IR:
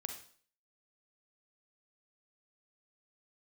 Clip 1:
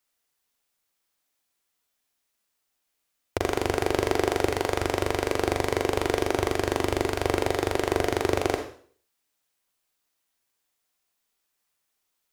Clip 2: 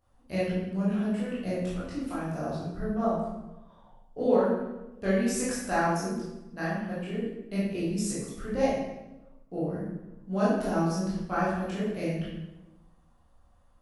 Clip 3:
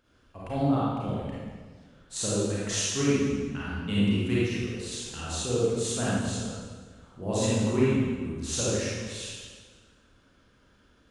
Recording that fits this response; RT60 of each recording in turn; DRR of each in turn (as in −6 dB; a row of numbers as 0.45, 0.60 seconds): 1; 0.50, 1.0, 1.6 seconds; 4.5, −9.5, −8.5 decibels